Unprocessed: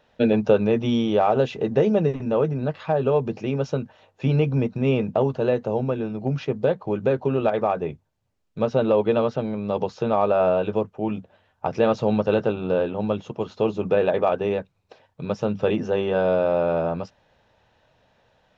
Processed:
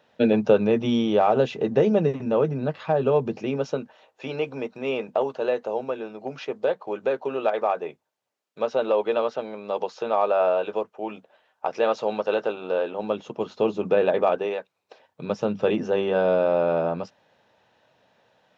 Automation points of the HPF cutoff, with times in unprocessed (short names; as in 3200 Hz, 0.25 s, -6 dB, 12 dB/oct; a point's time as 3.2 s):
3.26 s 140 Hz
4.26 s 460 Hz
12.82 s 460 Hz
13.42 s 190 Hz
14.31 s 190 Hz
14.56 s 580 Hz
15.32 s 170 Hz